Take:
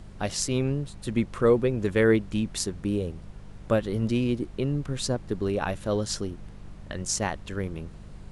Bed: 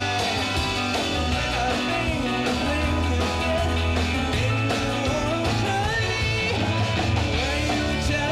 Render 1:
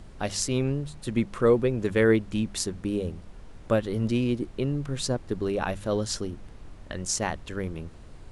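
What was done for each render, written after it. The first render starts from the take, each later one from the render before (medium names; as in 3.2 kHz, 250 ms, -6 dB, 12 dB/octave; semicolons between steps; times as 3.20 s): de-hum 50 Hz, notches 4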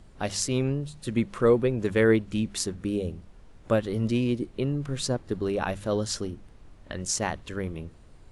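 noise print and reduce 6 dB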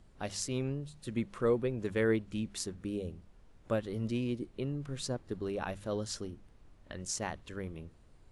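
trim -8.5 dB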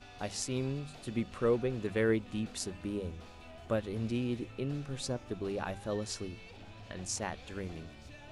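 add bed -28.5 dB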